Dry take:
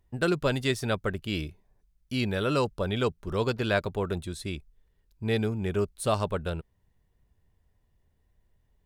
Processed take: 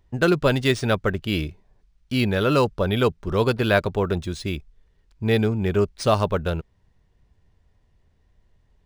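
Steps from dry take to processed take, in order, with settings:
linearly interpolated sample-rate reduction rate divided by 3×
level +7 dB

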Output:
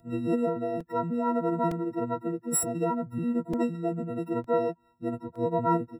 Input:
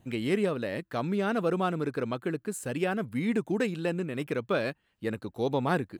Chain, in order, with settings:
every partial snapped to a pitch grid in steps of 6 semitones
phase-vocoder pitch shift with formants kept +1.5 semitones
regular buffer underruns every 0.91 s, samples 128, repeat, from 0:00.80
level −1 dB

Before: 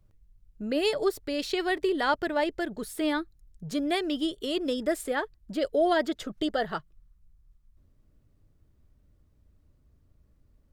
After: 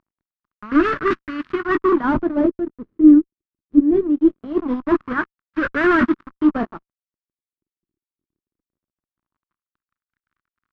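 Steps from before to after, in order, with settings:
linear delta modulator 32 kbit/s, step −28.5 dBFS
noise gate −23 dBFS, range −25 dB
double-tracking delay 20 ms −12 dB
fuzz pedal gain 47 dB, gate −56 dBFS
dynamic equaliser 290 Hz, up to +7 dB, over −31 dBFS, Q 0.85
auto-filter low-pass sine 0.22 Hz 360–1,500 Hz
flat-topped bell 610 Hz −14.5 dB 1.3 octaves
level −2 dB

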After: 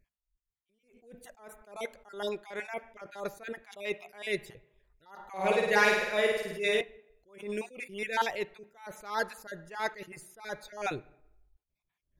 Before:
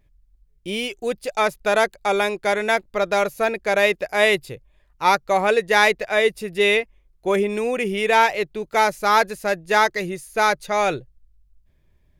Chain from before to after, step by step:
time-frequency cells dropped at random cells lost 35%
0:00.70–0:01.81: parametric band 3,300 Hz −10.5 dB 1.7 octaves
0:05.30–0:06.81: flutter between parallel walls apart 9 metres, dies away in 0.98 s
on a send at −17.5 dB: convolution reverb RT60 0.85 s, pre-delay 3 ms
on the sum: level that may rise only so fast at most 130 dB per second
level −8.5 dB

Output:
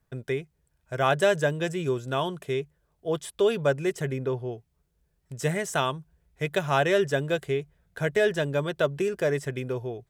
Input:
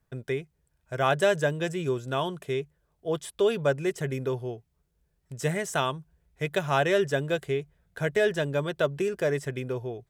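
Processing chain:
0:04.12–0:04.52: high-shelf EQ 4,500 Hz −11 dB
level +1 dB

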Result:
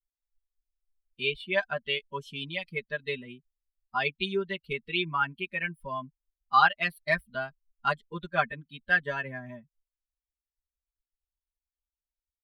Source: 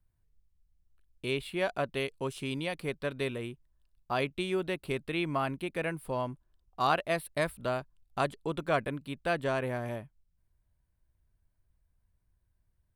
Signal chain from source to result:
spectral dynamics exaggerated over time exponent 2
drawn EQ curve 520 Hz 0 dB, 1,500 Hz +13 dB, 3,500 Hz +9 dB, 7,900 Hz −9 dB
wrong playback speed 24 fps film run at 25 fps
comb filter 5 ms, depth 97%
level −2 dB

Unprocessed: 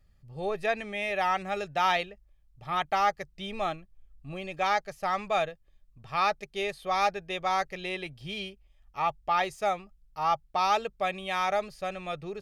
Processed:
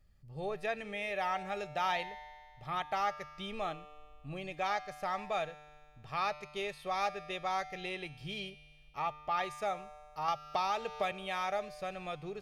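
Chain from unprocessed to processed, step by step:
in parallel at +2 dB: downward compressor, threshold −36 dBFS, peak gain reduction 15 dB
on the sum: tuned comb filter 150 Hz, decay 1.9 s, mix 70%
0:10.28–0:11.12: multiband upward and downward compressor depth 100%

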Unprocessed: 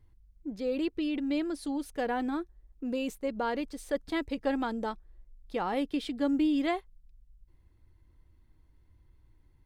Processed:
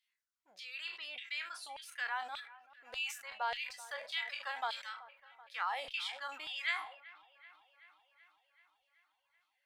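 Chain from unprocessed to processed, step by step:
peak hold with a decay on every bin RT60 0.41 s
auto-filter high-pass saw down 1.7 Hz 600–3,100 Hz
guitar amp tone stack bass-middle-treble 10-0-10
delay with a low-pass on its return 381 ms, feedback 66%, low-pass 2,500 Hz, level −18 dB
reverb reduction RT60 0.58 s
high-shelf EQ 6,400 Hz −10 dB
level that may fall only so fast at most 98 dB per second
level +2 dB

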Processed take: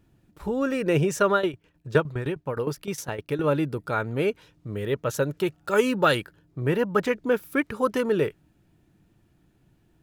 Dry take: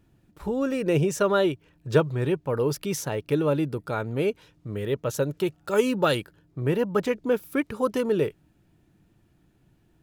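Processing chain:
dynamic equaliser 1,600 Hz, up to +6 dB, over −42 dBFS, Q 1.2
0:01.33–0:03.44: shaped tremolo saw down 9.7 Hz, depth 80%

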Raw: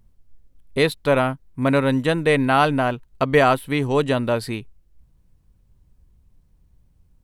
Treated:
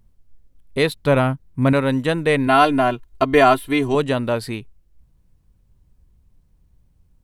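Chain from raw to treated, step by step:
0:00.96–0:01.73: parametric band 110 Hz +7 dB 2.3 octaves
0:02.47–0:03.95: comb filter 2.9 ms, depth 89%

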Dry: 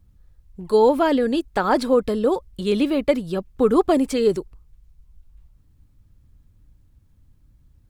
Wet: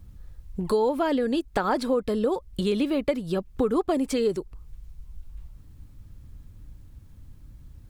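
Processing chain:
downward compressor 3 to 1, threshold −35 dBFS, peak gain reduction 17 dB
level +8.5 dB

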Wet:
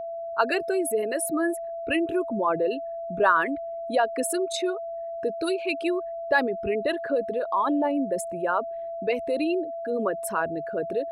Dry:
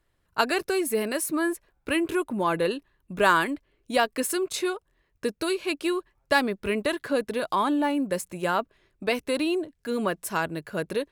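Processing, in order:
spectral envelope exaggerated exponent 2
steady tone 670 Hz −31 dBFS

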